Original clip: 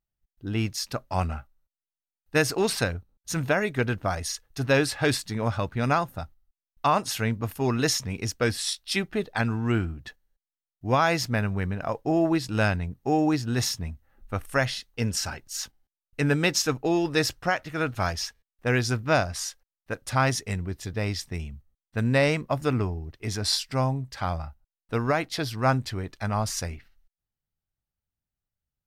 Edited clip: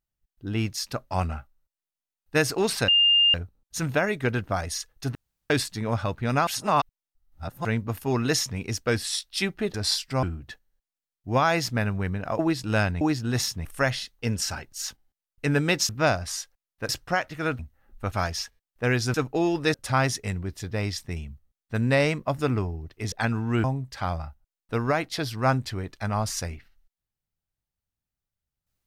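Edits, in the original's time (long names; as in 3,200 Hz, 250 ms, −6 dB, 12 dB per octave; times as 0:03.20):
0:02.88: insert tone 2,810 Hz −15.5 dBFS 0.46 s
0:04.69–0:05.04: fill with room tone
0:06.01–0:07.19: reverse
0:09.28–0:09.80: swap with 0:23.35–0:23.84
0:11.96–0:12.24: remove
0:12.86–0:13.24: remove
0:13.88–0:14.40: move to 0:17.94
0:16.64–0:17.24: swap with 0:18.97–0:19.97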